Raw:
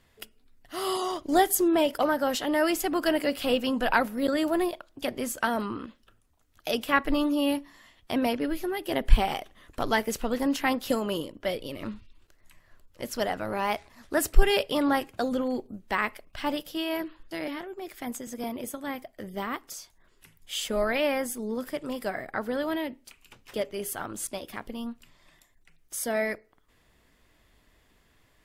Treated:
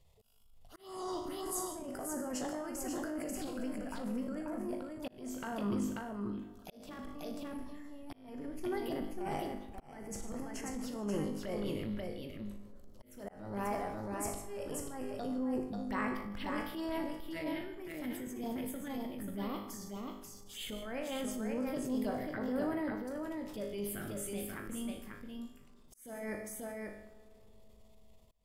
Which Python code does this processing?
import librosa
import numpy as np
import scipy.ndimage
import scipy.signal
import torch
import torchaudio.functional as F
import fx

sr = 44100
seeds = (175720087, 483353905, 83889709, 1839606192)

y = fx.low_shelf(x, sr, hz=240.0, db=10.0)
y = fx.env_phaser(y, sr, low_hz=250.0, high_hz=3700.0, full_db=-23.0)
y = fx.over_compress(y, sr, threshold_db=-27.0, ratio=-0.5)
y = fx.hum_notches(y, sr, base_hz=50, count=2)
y = fx.comb_fb(y, sr, f0_hz=51.0, decay_s=0.65, harmonics='all', damping=0.0, mix_pct=80)
y = fx.echo_multitap(y, sr, ms=(156, 538), db=(-16.0, -4.5))
y = fx.transient(y, sr, attack_db=-7, sustain_db=3)
y = fx.rev_freeverb(y, sr, rt60_s=3.8, hf_ratio=0.25, predelay_ms=30, drr_db=18.0)
y = fx.auto_swell(y, sr, attack_ms=406.0)
y = y * 10.0 ** (-3.5 / 20.0)